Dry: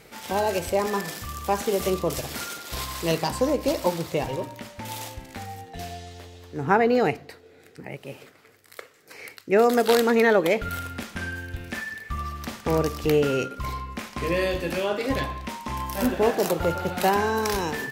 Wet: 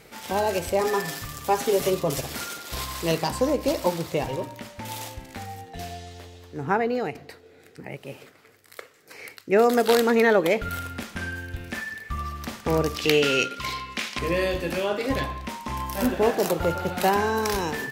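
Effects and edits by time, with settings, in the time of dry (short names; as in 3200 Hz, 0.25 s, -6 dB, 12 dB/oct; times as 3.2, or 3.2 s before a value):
0.8–2.21 comb 7.3 ms
6.29–7.15 fade out, to -8.5 dB
12.95–14.19 weighting filter D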